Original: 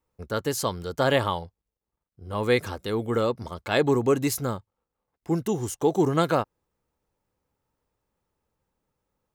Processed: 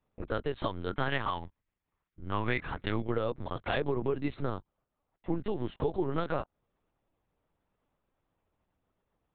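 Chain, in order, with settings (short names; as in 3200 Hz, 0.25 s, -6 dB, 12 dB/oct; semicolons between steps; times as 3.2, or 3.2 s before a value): 0.87–3.02 ten-band EQ 250 Hz +7 dB, 500 Hz -8 dB, 1000 Hz +4 dB, 2000 Hz +8 dB; compressor 5:1, threshold -28 dBFS, peak gain reduction 12.5 dB; LPC vocoder at 8 kHz pitch kept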